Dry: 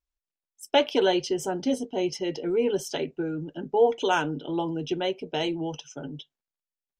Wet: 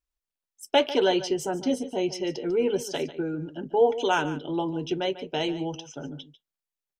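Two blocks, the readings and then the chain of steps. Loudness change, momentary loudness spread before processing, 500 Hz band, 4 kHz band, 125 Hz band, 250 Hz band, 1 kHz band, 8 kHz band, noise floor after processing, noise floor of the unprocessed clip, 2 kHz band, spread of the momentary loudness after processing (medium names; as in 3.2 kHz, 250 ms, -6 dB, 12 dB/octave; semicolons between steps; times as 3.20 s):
0.0 dB, 11 LU, 0.0 dB, 0.0 dB, 0.0 dB, 0.0 dB, 0.0 dB, 0.0 dB, under -85 dBFS, under -85 dBFS, 0.0 dB, 11 LU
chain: delay 146 ms -14.5 dB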